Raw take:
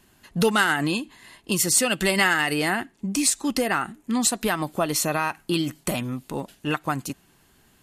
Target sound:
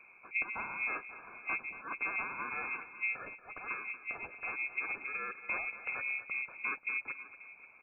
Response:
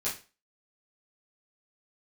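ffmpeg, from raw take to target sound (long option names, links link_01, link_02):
-filter_complex "[0:a]afftfilt=real='re*(1-between(b*sr/4096,210,2400))':imag='im*(1-between(b*sr/4096,210,2400))':win_size=4096:overlap=0.75,acompressor=threshold=-40dB:ratio=4,aeval=exprs='val(0)*sin(2*PI*780*n/s)':channel_layout=same,asplit=2[link_01][link_02];[link_02]asetrate=35002,aresample=44100,atempo=1.25992,volume=-4dB[link_03];[link_01][link_03]amix=inputs=2:normalize=0,aecho=1:1:233|535:0.2|0.133,lowpass=frequency=2600:width_type=q:width=0.5098,lowpass=frequency=2600:width_type=q:width=0.6013,lowpass=frequency=2600:width_type=q:width=0.9,lowpass=frequency=2600:width_type=q:width=2.563,afreqshift=-3100,volume=6.5dB"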